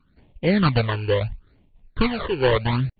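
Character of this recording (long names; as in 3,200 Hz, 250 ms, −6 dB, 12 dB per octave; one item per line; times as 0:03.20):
aliases and images of a low sample rate 2,600 Hz, jitter 20%
phaser sweep stages 12, 0.73 Hz, lowest notch 200–1,500 Hz
AC-3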